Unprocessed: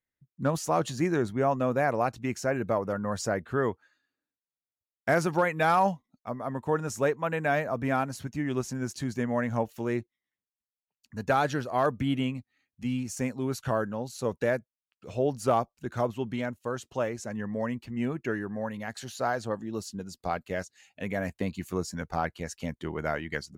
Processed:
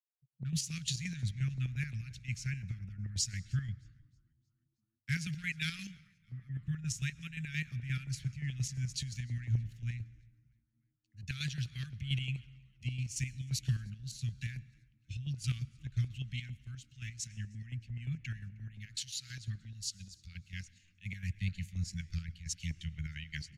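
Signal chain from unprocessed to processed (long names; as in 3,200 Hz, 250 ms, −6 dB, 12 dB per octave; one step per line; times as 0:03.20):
inverse Chebyshev band-stop filter 340–1,000 Hz, stop band 60 dB
square-wave tremolo 5.7 Hz, depth 60%, duty 45%
in parallel at −2 dB: brickwall limiter −34.5 dBFS, peak gain reduction 10 dB
on the sum: high-frequency loss of the air 51 metres
echo with shifted repeats 312 ms, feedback 64%, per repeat −86 Hz, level −23 dB
on a send at −18 dB: convolution reverb RT60 2.6 s, pre-delay 101 ms
on the sum: multiband upward and downward expander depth 70%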